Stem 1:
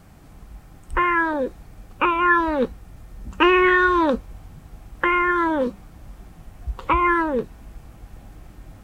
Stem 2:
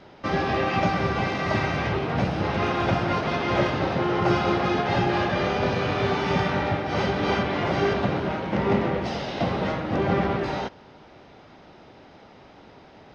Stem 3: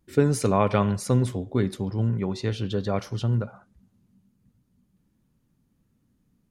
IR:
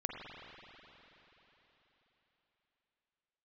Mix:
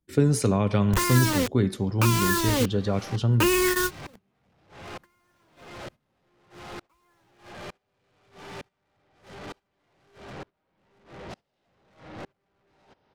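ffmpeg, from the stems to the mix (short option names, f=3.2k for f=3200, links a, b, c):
-filter_complex "[0:a]acrusher=bits=3:mix=0:aa=0.000001,volume=-1dB[a];[1:a]equalizer=f=220:t=o:w=0.77:g=-3.5,aeval=exprs='(tanh(50.1*val(0)+0.15)-tanh(0.15))/50.1':c=same,aeval=exprs='val(0)*pow(10,-34*if(lt(mod(-1.1*n/s,1),2*abs(-1.1)/1000),1-mod(-1.1*n/s,1)/(2*abs(-1.1)/1000),(mod(-1.1*n/s,1)-2*abs(-1.1)/1000)/(1-2*abs(-1.1)/1000))/20)':c=same,adelay=2250,volume=-1.5dB[b];[2:a]bandreject=f=219.4:t=h:w=4,bandreject=f=438.8:t=h:w=4,bandreject=f=658.2:t=h:w=4,bandreject=f=877.6:t=h:w=4,bandreject=f=1.097k:t=h:w=4,bandreject=f=1.3164k:t=h:w=4,bandreject=f=1.5358k:t=h:w=4,bandreject=f=1.7552k:t=h:w=4,bandreject=f=1.9746k:t=h:w=4,bandreject=f=2.194k:t=h:w=4,bandreject=f=2.4134k:t=h:w=4,bandreject=f=2.6328k:t=h:w=4,bandreject=f=2.8522k:t=h:w=4,bandreject=f=3.0716k:t=h:w=4,bandreject=f=3.291k:t=h:w=4,bandreject=f=3.5104k:t=h:w=4,bandreject=f=3.7298k:t=h:w=4,bandreject=f=3.9492k:t=h:w=4,bandreject=f=4.1686k:t=h:w=4,bandreject=f=4.388k:t=h:w=4,bandreject=f=4.6074k:t=h:w=4,bandreject=f=4.8268k:t=h:w=4,bandreject=f=5.0462k:t=h:w=4,bandreject=f=5.2656k:t=h:w=4,bandreject=f=5.485k:t=h:w=4,bandreject=f=5.7044k:t=h:w=4,bandreject=f=5.9238k:t=h:w=4,bandreject=f=6.1432k:t=h:w=4,bandreject=f=6.3626k:t=h:w=4,bandreject=f=6.582k:t=h:w=4,bandreject=f=6.8014k:t=h:w=4,bandreject=f=7.0208k:t=h:w=4,bandreject=f=7.2402k:t=h:w=4,bandreject=f=7.4596k:t=h:w=4,volume=2dB,asplit=2[c][d];[d]apad=whole_len=389563[e];[a][e]sidechaingate=range=-36dB:threshold=-56dB:ratio=16:detection=peak[f];[f][b][c]amix=inputs=3:normalize=0,agate=range=-13dB:threshold=-47dB:ratio=16:detection=peak,acrossover=split=350|3000[g][h][i];[h]acompressor=threshold=-27dB:ratio=6[j];[g][j][i]amix=inputs=3:normalize=0"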